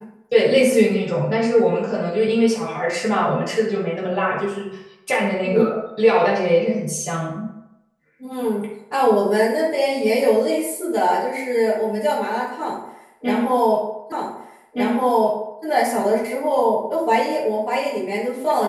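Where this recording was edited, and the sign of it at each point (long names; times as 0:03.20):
0:14.12: the same again, the last 1.52 s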